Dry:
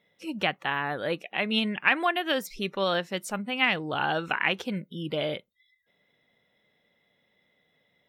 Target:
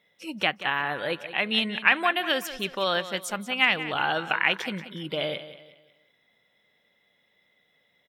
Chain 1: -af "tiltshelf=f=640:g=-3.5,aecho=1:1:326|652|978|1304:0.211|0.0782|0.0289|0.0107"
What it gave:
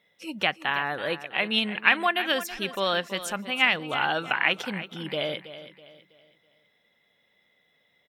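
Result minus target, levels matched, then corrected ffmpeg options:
echo 0.144 s late
-af "tiltshelf=f=640:g=-3.5,aecho=1:1:182|364|546|728:0.211|0.0782|0.0289|0.0107"

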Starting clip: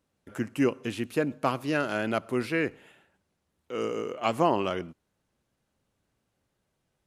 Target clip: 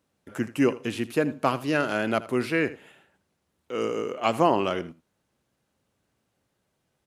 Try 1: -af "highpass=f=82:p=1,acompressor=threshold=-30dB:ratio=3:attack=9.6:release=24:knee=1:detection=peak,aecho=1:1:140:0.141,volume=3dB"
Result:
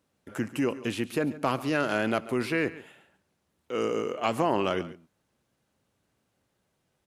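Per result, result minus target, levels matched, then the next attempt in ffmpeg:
echo 60 ms late; compressor: peak gain reduction +6.5 dB
-af "highpass=f=82:p=1,acompressor=threshold=-30dB:ratio=3:attack=9.6:release=24:knee=1:detection=peak,aecho=1:1:80:0.141,volume=3dB"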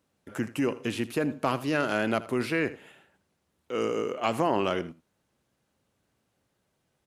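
compressor: peak gain reduction +6.5 dB
-af "highpass=f=82:p=1,aecho=1:1:80:0.141,volume=3dB"

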